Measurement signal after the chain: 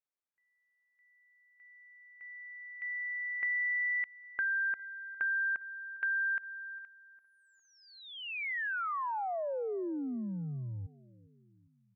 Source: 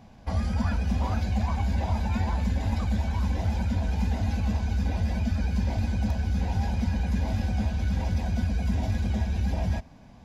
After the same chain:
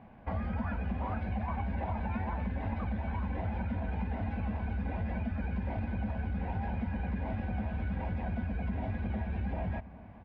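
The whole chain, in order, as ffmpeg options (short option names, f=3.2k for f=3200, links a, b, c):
-filter_complex "[0:a]lowshelf=f=140:g=-7.5,asplit=2[a][b];[b]adelay=405,lowpass=f=1.6k:p=1,volume=-22dB,asplit=2[c][d];[d]adelay=405,lowpass=f=1.6k:p=1,volume=0.54,asplit=2[e][f];[f]adelay=405,lowpass=f=1.6k:p=1,volume=0.54,asplit=2[g][h];[h]adelay=405,lowpass=f=1.6k:p=1,volume=0.54[i];[c][e][g][i]amix=inputs=4:normalize=0[j];[a][j]amix=inputs=2:normalize=0,acompressor=threshold=-30dB:ratio=6,lowpass=f=2.4k:w=0.5412,lowpass=f=2.4k:w=1.3066"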